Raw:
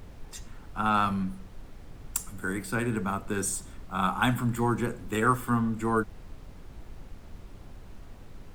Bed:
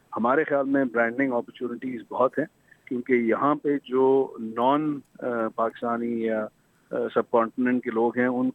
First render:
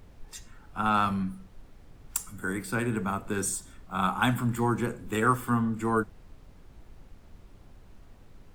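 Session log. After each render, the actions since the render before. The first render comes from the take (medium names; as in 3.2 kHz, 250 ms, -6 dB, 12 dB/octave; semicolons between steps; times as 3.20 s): noise print and reduce 6 dB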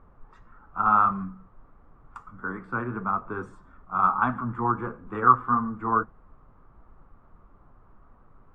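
flange 1.6 Hz, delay 3.5 ms, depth 5.2 ms, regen -54%; resonant low-pass 1.2 kHz, resonance Q 4.9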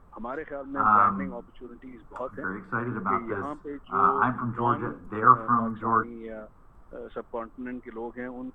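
add bed -13 dB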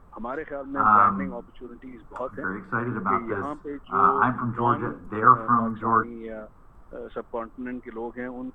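trim +2.5 dB; peak limiter -3 dBFS, peak gain reduction 2 dB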